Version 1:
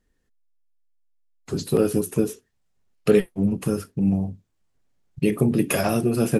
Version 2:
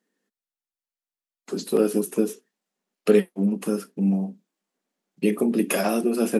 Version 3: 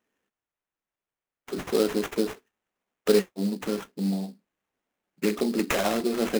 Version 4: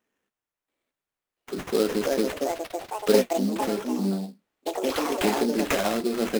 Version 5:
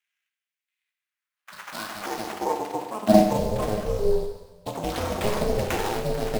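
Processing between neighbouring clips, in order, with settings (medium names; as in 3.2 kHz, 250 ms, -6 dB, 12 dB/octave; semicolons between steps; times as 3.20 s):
elliptic high-pass 190 Hz, stop band 40 dB
bass shelf 320 Hz -7.5 dB; sample-rate reducer 4.6 kHz, jitter 20%
ever faster or slower copies 683 ms, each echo +4 st, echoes 3
high-pass sweep 2.3 kHz -> 130 Hz, 0.80–4.65 s; Schroeder reverb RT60 1.3 s, combs from 30 ms, DRR 4.5 dB; ring modulator 210 Hz; trim -1 dB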